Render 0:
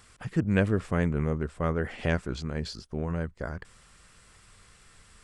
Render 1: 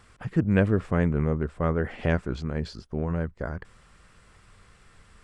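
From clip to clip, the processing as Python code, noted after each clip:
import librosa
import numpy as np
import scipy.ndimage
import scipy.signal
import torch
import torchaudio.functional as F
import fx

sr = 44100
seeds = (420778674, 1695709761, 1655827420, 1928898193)

y = fx.high_shelf(x, sr, hz=3400.0, db=-11.5)
y = y * 10.0 ** (3.0 / 20.0)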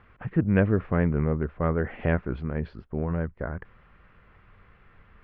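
y = scipy.signal.sosfilt(scipy.signal.butter(4, 2600.0, 'lowpass', fs=sr, output='sos'), x)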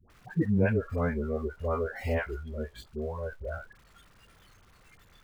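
y = x + 0.5 * 10.0 ** (-32.0 / 20.0) * np.sign(x)
y = fx.dispersion(y, sr, late='highs', ms=100.0, hz=620.0)
y = fx.noise_reduce_blind(y, sr, reduce_db=18)
y = y * 10.0 ** (-3.5 / 20.0)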